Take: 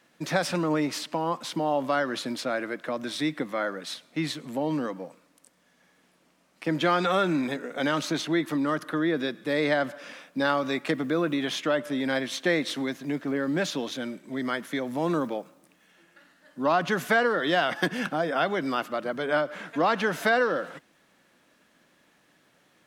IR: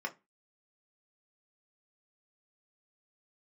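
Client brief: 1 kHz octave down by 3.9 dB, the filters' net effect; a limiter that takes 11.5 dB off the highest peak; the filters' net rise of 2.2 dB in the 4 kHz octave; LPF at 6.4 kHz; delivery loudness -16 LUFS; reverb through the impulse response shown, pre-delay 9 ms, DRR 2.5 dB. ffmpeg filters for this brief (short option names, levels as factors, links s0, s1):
-filter_complex "[0:a]lowpass=6400,equalizer=f=1000:t=o:g=-6,equalizer=f=4000:t=o:g=3.5,alimiter=limit=0.075:level=0:latency=1,asplit=2[s0][s1];[1:a]atrim=start_sample=2205,adelay=9[s2];[s1][s2]afir=irnorm=-1:irlink=0,volume=0.531[s3];[s0][s3]amix=inputs=2:normalize=0,volume=5.31"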